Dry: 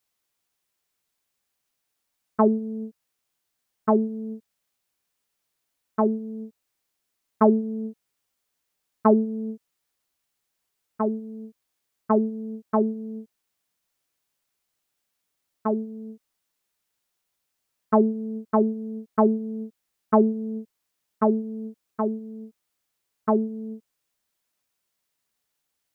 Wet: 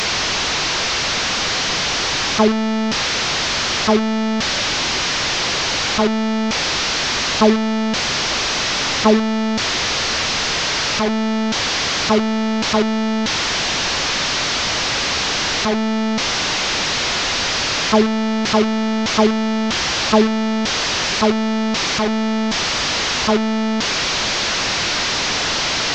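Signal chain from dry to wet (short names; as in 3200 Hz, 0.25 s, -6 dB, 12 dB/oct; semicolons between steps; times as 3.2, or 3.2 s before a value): delta modulation 32 kbps, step -17 dBFS; gain +4.5 dB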